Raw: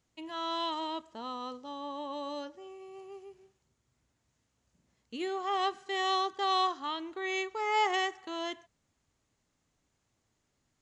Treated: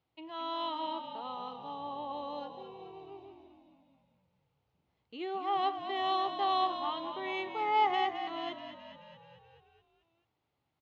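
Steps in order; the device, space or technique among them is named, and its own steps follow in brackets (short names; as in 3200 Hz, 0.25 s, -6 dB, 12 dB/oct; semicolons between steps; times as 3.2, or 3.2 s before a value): frequency-shifting delay pedal into a guitar cabinet (frequency-shifting echo 0.215 s, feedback 63%, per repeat -42 Hz, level -9 dB; speaker cabinet 77–3900 Hz, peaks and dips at 220 Hz -9 dB, 820 Hz +6 dB, 1700 Hz -7 dB); gain -3 dB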